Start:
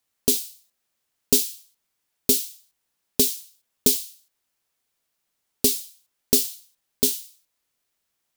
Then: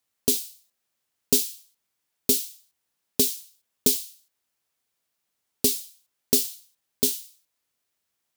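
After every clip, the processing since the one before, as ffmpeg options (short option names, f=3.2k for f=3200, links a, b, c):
-af "highpass=46,volume=-2dB"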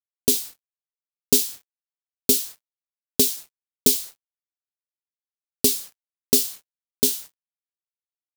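-af "acrusher=bits=6:mix=0:aa=0.5,volume=3dB"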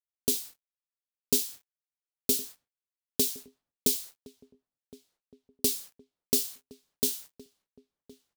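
-filter_complex "[0:a]asplit=2[a][b];[b]adelay=1066,lowpass=f=1.2k:p=1,volume=-18.5dB,asplit=2[c][d];[d]adelay=1066,lowpass=f=1.2k:p=1,volume=0.48,asplit=2[e][f];[f]adelay=1066,lowpass=f=1.2k:p=1,volume=0.48,asplit=2[g][h];[h]adelay=1066,lowpass=f=1.2k:p=1,volume=0.48[i];[a][c][e][g][i]amix=inputs=5:normalize=0,volume=-8dB"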